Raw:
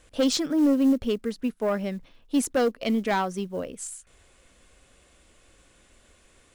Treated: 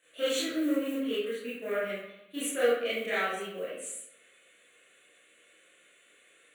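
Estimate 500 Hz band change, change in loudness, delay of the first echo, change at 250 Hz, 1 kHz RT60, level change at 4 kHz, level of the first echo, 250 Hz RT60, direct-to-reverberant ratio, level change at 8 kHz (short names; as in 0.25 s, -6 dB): -2.5 dB, -6.0 dB, none, -10.5 dB, 0.85 s, -2.5 dB, none, 0.90 s, -11.0 dB, -4.0 dB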